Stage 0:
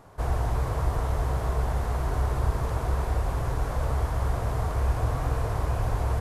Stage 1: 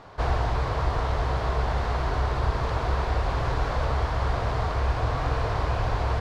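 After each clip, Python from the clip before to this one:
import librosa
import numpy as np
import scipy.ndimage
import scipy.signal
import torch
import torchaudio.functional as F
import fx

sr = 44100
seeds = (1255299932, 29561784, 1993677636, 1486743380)

y = fx.curve_eq(x, sr, hz=(160.0, 4400.0, 11000.0), db=(0, 9, -16))
y = fx.rider(y, sr, range_db=10, speed_s=0.5)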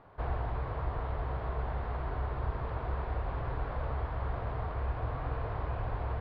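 y = fx.air_absorb(x, sr, metres=430.0)
y = y * 10.0 ** (-8.5 / 20.0)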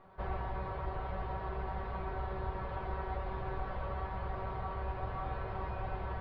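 y = fx.comb_fb(x, sr, f0_hz=190.0, decay_s=0.17, harmonics='all', damping=0.0, mix_pct=90)
y = y * 10.0 ** (8.0 / 20.0)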